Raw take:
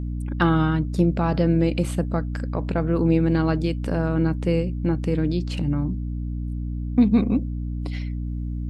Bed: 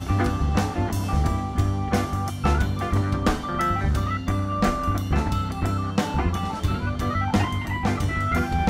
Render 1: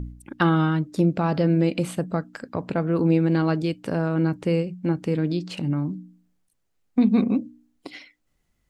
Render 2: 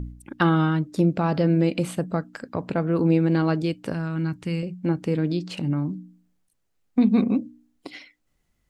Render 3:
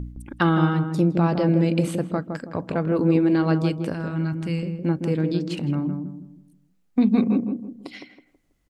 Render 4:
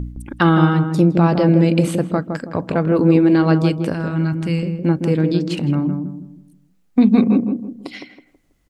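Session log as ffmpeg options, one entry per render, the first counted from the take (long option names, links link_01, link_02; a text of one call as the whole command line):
ffmpeg -i in.wav -af "bandreject=frequency=60:width_type=h:width=4,bandreject=frequency=120:width_type=h:width=4,bandreject=frequency=180:width_type=h:width=4,bandreject=frequency=240:width_type=h:width=4,bandreject=frequency=300:width_type=h:width=4" out.wav
ffmpeg -i in.wav -filter_complex "[0:a]asettb=1/sr,asplit=3[link_01][link_02][link_03];[link_01]atrim=end=3.924[link_04];[link_02]atrim=start=3.92:end=4.63,asetpts=PTS-STARTPTS,afade=type=in:duration=0.004:curve=qsin,afade=type=out:start_time=0.706:duration=0.004:curve=qsin,equalizer=frequency=530:width=0.86:gain=-13[link_05];[link_03]atrim=start=4.626[link_06];[link_04][link_05]acrossfade=duration=0.004:curve1=hsin:curve2=qsin[link_07];[link_07][link_06]acrossfade=duration=0.004:curve1=qsin:curve2=hsin" out.wav
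ffmpeg -i in.wav -filter_complex "[0:a]asplit=2[link_01][link_02];[link_02]adelay=162,lowpass=frequency=840:poles=1,volume=-4.5dB,asplit=2[link_03][link_04];[link_04]adelay=162,lowpass=frequency=840:poles=1,volume=0.38,asplit=2[link_05][link_06];[link_06]adelay=162,lowpass=frequency=840:poles=1,volume=0.38,asplit=2[link_07][link_08];[link_08]adelay=162,lowpass=frequency=840:poles=1,volume=0.38,asplit=2[link_09][link_10];[link_10]adelay=162,lowpass=frequency=840:poles=1,volume=0.38[link_11];[link_01][link_03][link_05][link_07][link_09][link_11]amix=inputs=6:normalize=0" out.wav
ffmpeg -i in.wav -af "volume=6dB,alimiter=limit=-3dB:level=0:latency=1" out.wav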